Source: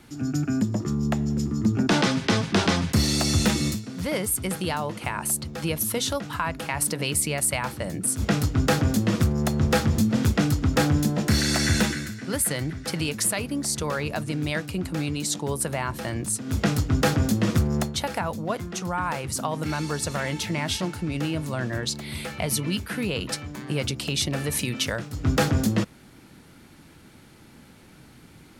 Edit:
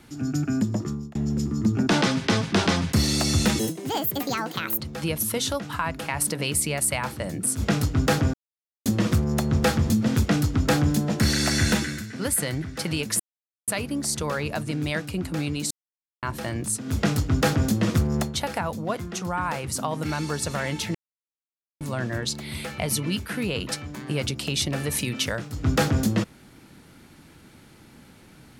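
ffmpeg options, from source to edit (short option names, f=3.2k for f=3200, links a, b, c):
-filter_complex "[0:a]asplit=10[a][b][c][d][e][f][g][h][i][j];[a]atrim=end=1.15,asetpts=PTS-STARTPTS,afade=t=out:st=0.8:d=0.35[k];[b]atrim=start=1.15:end=3.594,asetpts=PTS-STARTPTS,afade=t=in:d=0.004:c=hsin[l];[c]atrim=start=3.59:end=5.4,asetpts=PTS-STARTPTS,asetrate=66150,aresample=44100[m];[d]atrim=start=5.396:end=8.94,asetpts=PTS-STARTPTS,afade=t=out:st=3.54:d=0.004:c=hsin,apad=pad_dur=0.52[n];[e]atrim=start=8.94:end=13.28,asetpts=PTS-STARTPTS,afade=t=in:d=0.004:c=hsin,afade=t=out:st=4.336:d=0.004:c=hsin,apad=pad_dur=0.48[o];[f]atrim=start=13.28:end=15.31,asetpts=PTS-STARTPTS,afade=t=in:d=0.004:c=hsin,afade=t=out:st=2.026:d=0.004:c=hsin[p];[g]atrim=start=15.31:end=15.83,asetpts=PTS-STARTPTS,volume=0[q];[h]atrim=start=15.83:end=20.55,asetpts=PTS-STARTPTS,afade=t=in:d=0.004:c=hsin,afade=t=out:st=4.716:d=0.004:c=hsin[r];[i]atrim=start=20.55:end=21.41,asetpts=PTS-STARTPTS,volume=0[s];[j]atrim=start=21.41,asetpts=PTS-STARTPTS,afade=t=in:d=0.004:c=hsin[t];[k][l]concat=n=2:v=0:a=1[u];[u][m]acrossfade=d=0.004:c1=hsin:c2=hsin[v];[n][o][p][q][r][s][t]concat=n=7:v=0:a=1[w];[v][w]acrossfade=d=0.004:c1=hsin:c2=hsin"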